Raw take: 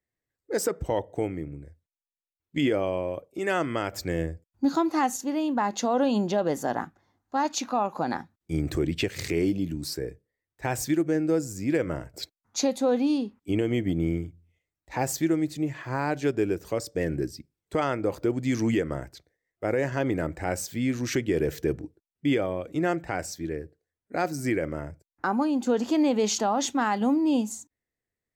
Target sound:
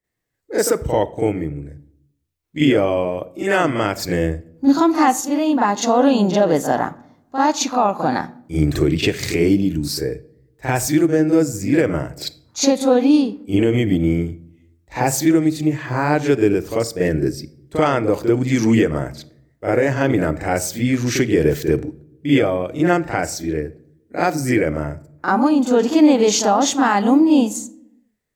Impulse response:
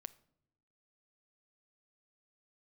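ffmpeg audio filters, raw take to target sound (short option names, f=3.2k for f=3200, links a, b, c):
-filter_complex "[0:a]asplit=2[a][b];[1:a]atrim=start_sample=2205,adelay=40[c];[b][c]afir=irnorm=-1:irlink=0,volume=13dB[d];[a][d]amix=inputs=2:normalize=0,volume=1dB"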